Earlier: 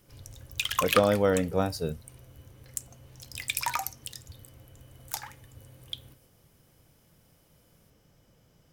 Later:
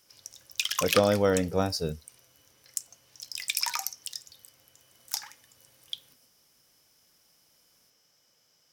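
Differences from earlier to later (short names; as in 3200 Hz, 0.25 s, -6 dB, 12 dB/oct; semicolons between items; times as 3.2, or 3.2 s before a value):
background: add HPF 1500 Hz 6 dB/oct; master: add bell 5400 Hz +10 dB 0.54 oct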